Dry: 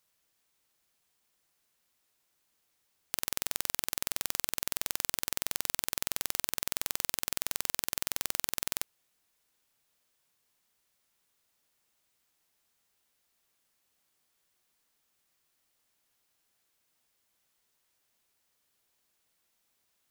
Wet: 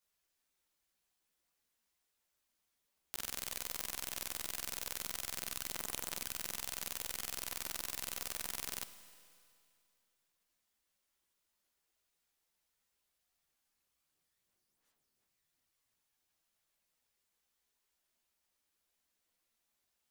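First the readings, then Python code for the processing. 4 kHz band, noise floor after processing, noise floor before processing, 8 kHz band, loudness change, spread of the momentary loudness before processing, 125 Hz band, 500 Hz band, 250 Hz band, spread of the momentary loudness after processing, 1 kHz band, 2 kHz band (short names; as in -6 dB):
-7.0 dB, -84 dBFS, -76 dBFS, -7.0 dB, -7.5 dB, 1 LU, -6.5 dB, -6.0 dB, -6.0 dB, 2 LU, -6.5 dB, -6.5 dB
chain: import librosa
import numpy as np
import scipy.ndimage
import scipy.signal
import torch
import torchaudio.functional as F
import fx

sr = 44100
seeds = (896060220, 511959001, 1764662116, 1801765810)

y = fx.chorus_voices(x, sr, voices=6, hz=1.4, base_ms=15, depth_ms=3.0, mix_pct=55)
y = fx.rev_schroeder(y, sr, rt60_s=2.4, comb_ms=33, drr_db=12.0)
y = F.gain(torch.from_numpy(y), -4.0).numpy()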